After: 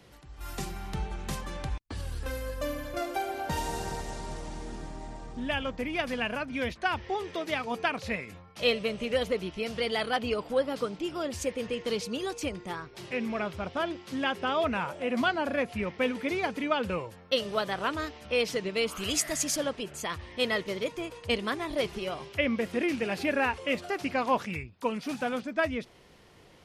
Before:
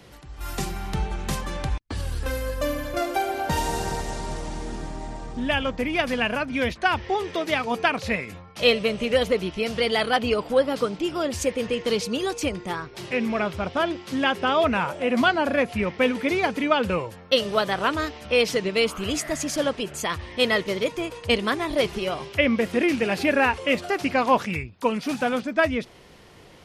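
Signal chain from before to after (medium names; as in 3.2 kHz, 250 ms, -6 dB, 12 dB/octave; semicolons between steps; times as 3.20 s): 18.91–19.56 s: treble shelf 2.2 kHz -> 3.3 kHz +10.5 dB; trim -7 dB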